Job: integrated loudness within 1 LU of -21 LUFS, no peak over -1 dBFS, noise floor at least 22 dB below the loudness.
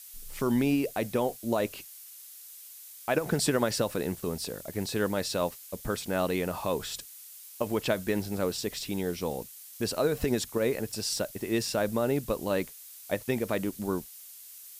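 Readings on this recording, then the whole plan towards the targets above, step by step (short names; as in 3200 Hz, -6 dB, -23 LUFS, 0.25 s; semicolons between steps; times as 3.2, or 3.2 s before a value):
noise floor -48 dBFS; noise floor target -53 dBFS; loudness -30.5 LUFS; peak -12.0 dBFS; loudness target -21.0 LUFS
-> noise print and reduce 6 dB; gain +9.5 dB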